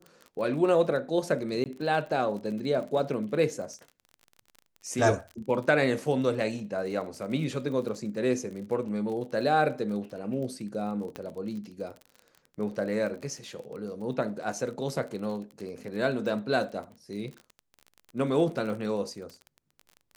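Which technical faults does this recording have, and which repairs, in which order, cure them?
surface crackle 36 per second −37 dBFS
0:01.64–0:01.66: drop-out 18 ms
0:11.16: click −22 dBFS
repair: click removal
repair the gap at 0:01.64, 18 ms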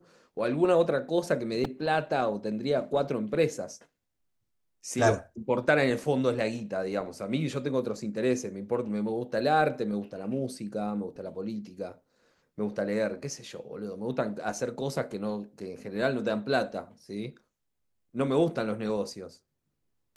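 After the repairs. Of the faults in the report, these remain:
0:11.16: click

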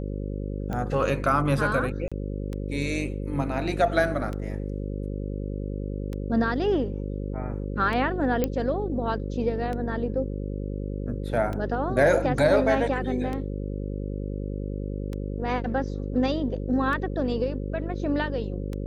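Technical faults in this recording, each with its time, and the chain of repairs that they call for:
mains buzz 50 Hz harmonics 11 −31 dBFS
scratch tick 33 1/3 rpm −20 dBFS
0:02.08–0:02.12: drop-out 36 ms
0:08.44: click −11 dBFS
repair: click removal
hum removal 50 Hz, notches 11
repair the gap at 0:02.08, 36 ms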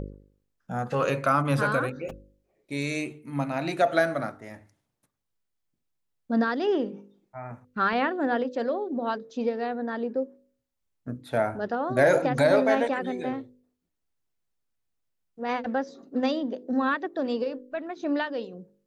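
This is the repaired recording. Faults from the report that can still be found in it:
none of them is left

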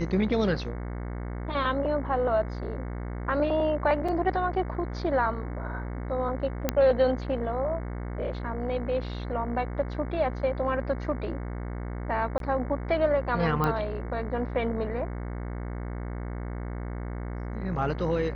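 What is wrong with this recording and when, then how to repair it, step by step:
mains buzz 60 Hz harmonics 37 −34 dBFS
0:04.08–0:04.09: drop-out 5.1 ms
0:06.69: click −9 dBFS
0:12.38–0:12.40: drop-out 22 ms
0:13.64: click −14 dBFS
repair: click removal
hum removal 60 Hz, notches 37
repair the gap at 0:04.08, 5.1 ms
repair the gap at 0:12.38, 22 ms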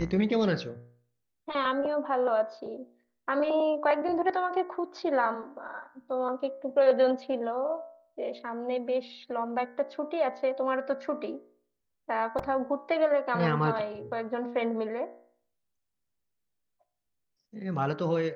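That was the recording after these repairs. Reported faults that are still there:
none of them is left

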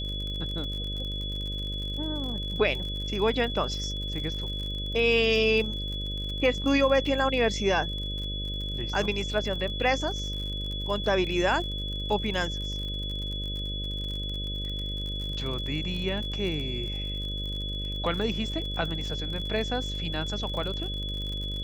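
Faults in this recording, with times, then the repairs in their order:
mains buzz 50 Hz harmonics 12 −34 dBFS
surface crackle 49 per second −34 dBFS
whistle 3,400 Hz −34 dBFS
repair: click removal
hum removal 50 Hz, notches 12
notch filter 3,400 Hz, Q 30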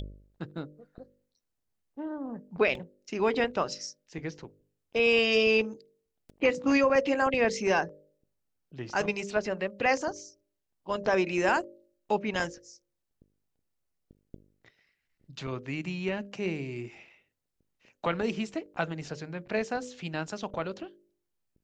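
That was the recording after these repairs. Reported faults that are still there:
none of them is left

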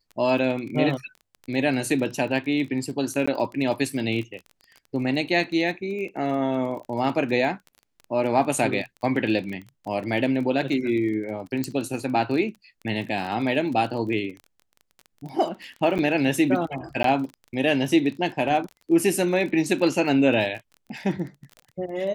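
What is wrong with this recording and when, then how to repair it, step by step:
surface crackle 26 per second −32 dBFS
0:03.26–0:03.27: drop-out 15 ms
0:11.64: click −13 dBFS
0:15.98–0:15.99: drop-out 9 ms
0:17.03–0:17.04: drop-out 13 ms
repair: click removal
repair the gap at 0:03.26, 15 ms
repair the gap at 0:15.98, 9 ms
repair the gap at 0:17.03, 13 ms

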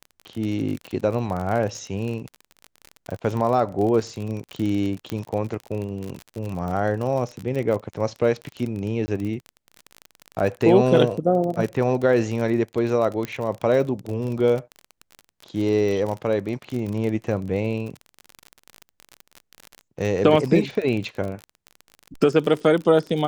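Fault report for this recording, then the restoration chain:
surface crackle 35 per second −27 dBFS
0:05.10: click −14 dBFS
0:09.06–0:09.08: drop-out 20 ms
0:13.25: click −15 dBFS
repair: click removal
repair the gap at 0:09.06, 20 ms

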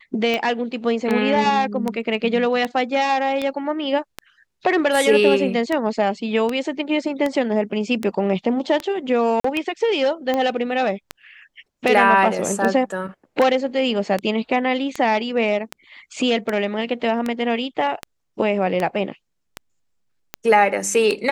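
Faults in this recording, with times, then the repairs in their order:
scratch tick 78 rpm −10 dBFS
0:09.40–0:09.44: drop-out 44 ms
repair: click removal
repair the gap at 0:09.40, 44 ms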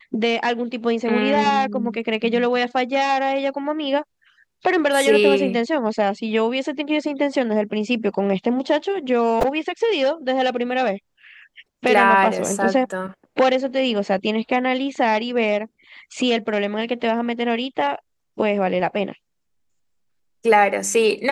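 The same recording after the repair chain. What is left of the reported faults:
none of them is left

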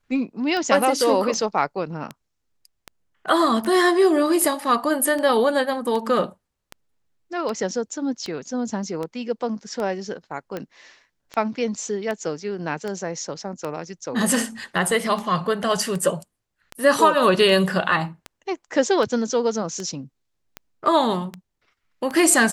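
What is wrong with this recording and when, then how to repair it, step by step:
scratch tick 78 rpm −16 dBFS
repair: click removal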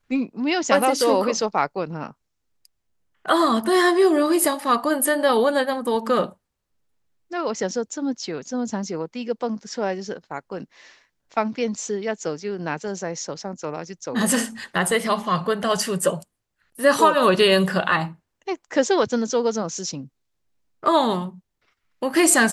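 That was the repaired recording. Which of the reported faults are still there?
none of them is left

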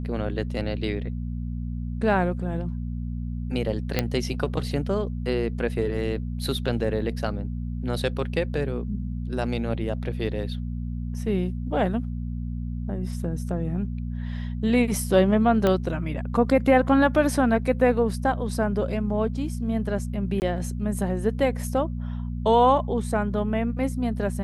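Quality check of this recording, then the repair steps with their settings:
mains hum 60 Hz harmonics 4 −30 dBFS
0:03.99: click −8 dBFS
0:15.67: click −10 dBFS
0:20.40–0:20.42: drop-out 19 ms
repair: click removal
hum removal 60 Hz, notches 4
repair the gap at 0:20.40, 19 ms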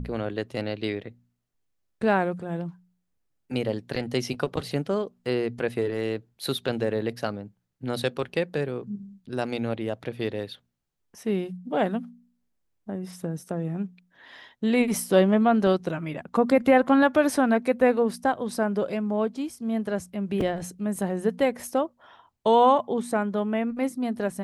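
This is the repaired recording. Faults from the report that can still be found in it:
0:15.67: click

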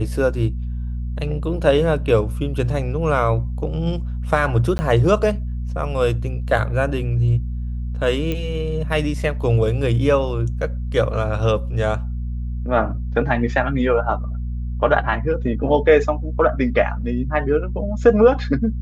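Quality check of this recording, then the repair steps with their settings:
mains hum 60 Hz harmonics 4 −25 dBFS
0:04.78–0:04.79: drop-out 10 ms
0:08.32: click −12 dBFS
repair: click removal
hum removal 60 Hz, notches 4
repair the gap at 0:04.78, 10 ms

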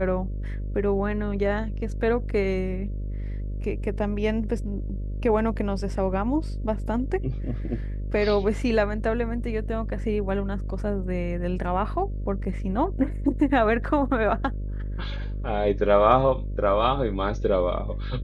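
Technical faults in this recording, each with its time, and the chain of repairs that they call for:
mains buzz 50 Hz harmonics 12 −30 dBFS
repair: hum removal 50 Hz, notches 12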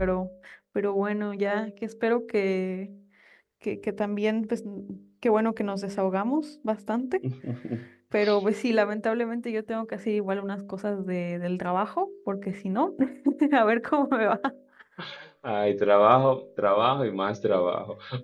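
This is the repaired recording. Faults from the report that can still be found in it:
none of them is left

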